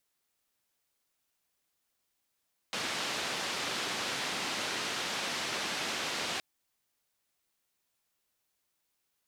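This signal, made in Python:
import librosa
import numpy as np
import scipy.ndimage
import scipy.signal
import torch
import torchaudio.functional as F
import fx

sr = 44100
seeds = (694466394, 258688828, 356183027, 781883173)

y = fx.band_noise(sr, seeds[0], length_s=3.67, low_hz=160.0, high_hz=4300.0, level_db=-35.0)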